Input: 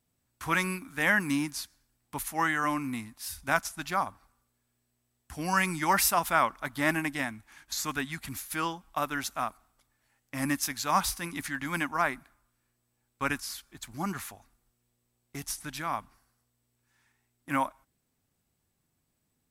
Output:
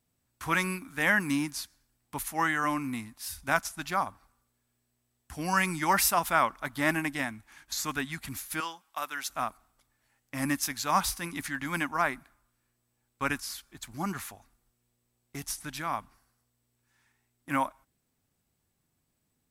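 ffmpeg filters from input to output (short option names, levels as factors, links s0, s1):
-filter_complex "[0:a]asettb=1/sr,asplit=3[s0][s1][s2];[s0]atrim=end=8.604[s3];[s1]atrim=start=8.6:end=9.3,asetpts=PTS-STARTPTS,afade=t=in:d=0.004:c=qsin,afade=t=out:st=0.696:d=0.004:c=qsin,highpass=f=1300:p=1[s4];[s2]atrim=start=9.296[s5];[s3][s4]acrossfade=d=0.004:c1=hsin:c2=qsin[s6];[s6][s5]acrossfade=d=0.004:c1=qsin:c2=hsin"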